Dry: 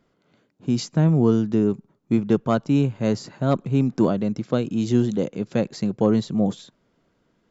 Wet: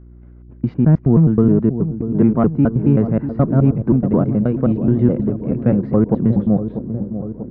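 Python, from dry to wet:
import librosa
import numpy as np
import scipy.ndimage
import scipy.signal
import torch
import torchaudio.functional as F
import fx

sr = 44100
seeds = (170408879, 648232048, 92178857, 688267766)

p1 = fx.block_reorder(x, sr, ms=106.0, group=2)
p2 = 10.0 ** (-16.5 / 20.0) * np.tanh(p1 / 10.0 ** (-16.5 / 20.0))
p3 = p1 + (p2 * 10.0 ** (-10.0 / 20.0))
p4 = scipy.signal.sosfilt(scipy.signal.butter(4, 1900.0, 'lowpass', fs=sr, output='sos'), p3)
p5 = fx.low_shelf(p4, sr, hz=290.0, db=8.5)
p6 = fx.dmg_buzz(p5, sr, base_hz=60.0, harmonics=6, level_db=-40.0, tilt_db=-7, odd_only=False)
p7 = p6 + fx.echo_wet_lowpass(p6, sr, ms=641, feedback_pct=65, hz=790.0, wet_db=-10, dry=0)
y = p7 * 10.0 ** (-1.0 / 20.0)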